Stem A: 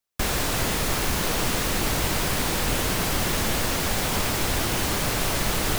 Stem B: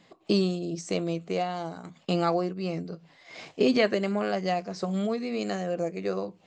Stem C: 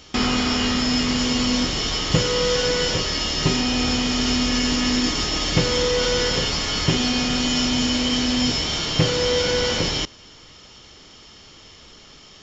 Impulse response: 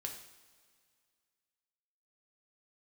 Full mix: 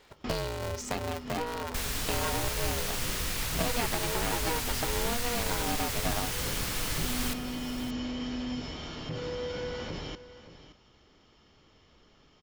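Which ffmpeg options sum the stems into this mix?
-filter_complex "[0:a]equalizer=frequency=410:width_type=o:width=2.3:gain=-14,adelay=1550,volume=-6.5dB,asplit=2[link_01][link_02];[link_02]volume=-13dB[link_03];[1:a]equalizer=frequency=65:width=0.38:gain=-5.5,acompressor=threshold=-30dB:ratio=6,aeval=exprs='val(0)*sgn(sin(2*PI*240*n/s))':channel_layout=same,volume=1dB,asplit=2[link_04][link_05];[2:a]lowpass=frequency=1500:poles=1,alimiter=limit=-15.5dB:level=0:latency=1:release=55,adelay=100,volume=-11.5dB,asplit=2[link_06][link_07];[link_07]volume=-14.5dB[link_08];[link_05]apad=whole_len=552158[link_09];[link_06][link_09]sidechaincompress=threshold=-51dB:ratio=8:attack=16:release=116[link_10];[link_03][link_08]amix=inputs=2:normalize=0,aecho=0:1:572:1[link_11];[link_01][link_04][link_10][link_11]amix=inputs=4:normalize=0"

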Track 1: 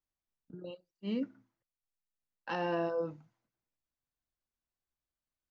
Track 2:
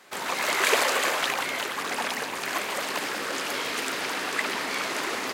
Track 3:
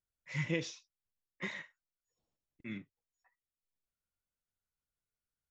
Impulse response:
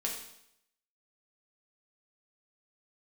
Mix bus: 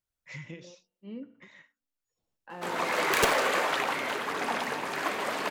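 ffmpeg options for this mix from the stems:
-filter_complex "[0:a]lowpass=2300,volume=-8dB,asplit=3[link_01][link_02][link_03];[link_02]volume=-14dB[link_04];[1:a]highshelf=frequency=2600:gain=-10.5,flanger=delay=2:depth=6:regen=-66:speed=1.6:shape=sinusoidal,aeval=exprs='(mod(8.91*val(0)+1,2)-1)/8.91':channel_layout=same,adelay=2500,volume=2.5dB,asplit=2[link_05][link_06];[link_06]volume=-8.5dB[link_07];[2:a]acompressor=threshold=-42dB:ratio=8,volume=2.5dB[link_08];[link_03]apad=whole_len=242881[link_09];[link_08][link_09]sidechaincompress=threshold=-51dB:ratio=6:attack=7.4:release=994[link_10];[3:a]atrim=start_sample=2205[link_11];[link_04][link_07]amix=inputs=2:normalize=0[link_12];[link_12][link_11]afir=irnorm=-1:irlink=0[link_13];[link_01][link_05][link_10][link_13]amix=inputs=4:normalize=0"

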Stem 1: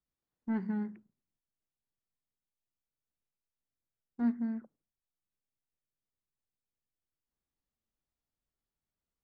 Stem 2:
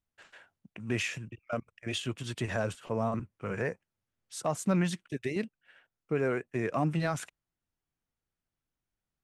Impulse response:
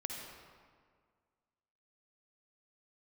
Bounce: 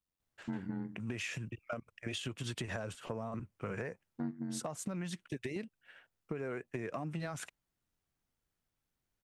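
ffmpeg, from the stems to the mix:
-filter_complex "[0:a]tremolo=f=92:d=0.857,volume=3dB[link_01];[1:a]acompressor=threshold=-34dB:ratio=6,adelay=200,volume=1.5dB[link_02];[link_01][link_02]amix=inputs=2:normalize=0,acompressor=threshold=-35dB:ratio=6"

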